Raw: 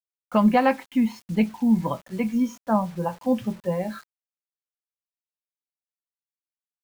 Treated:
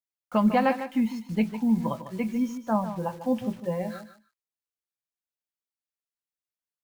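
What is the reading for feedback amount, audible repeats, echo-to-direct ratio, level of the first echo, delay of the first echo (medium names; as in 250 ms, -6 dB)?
16%, 2, -11.0 dB, -11.0 dB, 150 ms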